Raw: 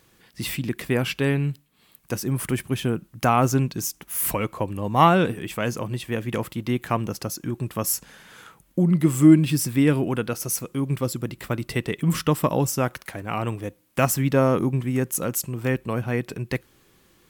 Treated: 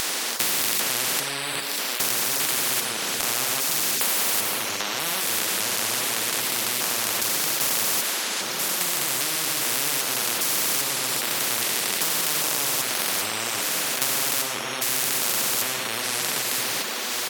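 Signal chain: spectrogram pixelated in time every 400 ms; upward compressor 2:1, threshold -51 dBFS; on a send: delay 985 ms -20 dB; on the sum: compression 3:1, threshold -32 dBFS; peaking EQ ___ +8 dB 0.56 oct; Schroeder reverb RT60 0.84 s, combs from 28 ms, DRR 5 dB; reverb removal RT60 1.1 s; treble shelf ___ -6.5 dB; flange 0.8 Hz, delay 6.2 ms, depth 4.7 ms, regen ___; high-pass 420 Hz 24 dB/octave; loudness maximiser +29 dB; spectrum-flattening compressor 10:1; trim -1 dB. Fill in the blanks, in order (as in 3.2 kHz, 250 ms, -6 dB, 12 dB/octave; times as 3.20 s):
4.3 kHz, 8.6 kHz, +54%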